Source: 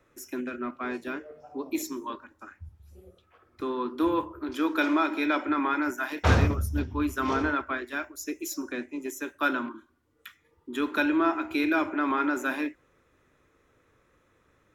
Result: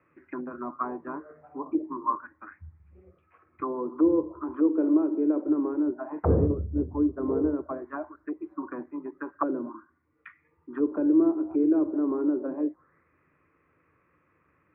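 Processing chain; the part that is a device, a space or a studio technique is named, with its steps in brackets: envelope filter bass rig (envelope low-pass 460–2600 Hz down, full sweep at -25 dBFS; speaker cabinet 73–2100 Hz, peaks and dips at 80 Hz +8 dB, 160 Hz +10 dB, 310 Hz +6 dB, 1100 Hz +7 dB); gain -6 dB

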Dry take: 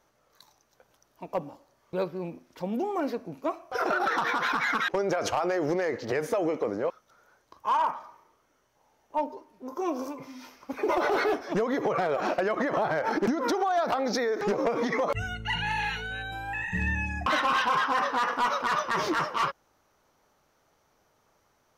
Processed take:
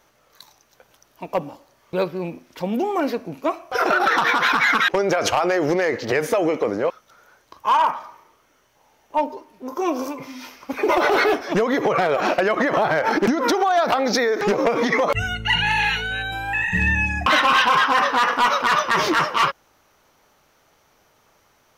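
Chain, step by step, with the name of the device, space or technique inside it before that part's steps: presence and air boost (bell 2700 Hz +5 dB 1.4 oct; high shelf 10000 Hz +6 dB); gain +7 dB

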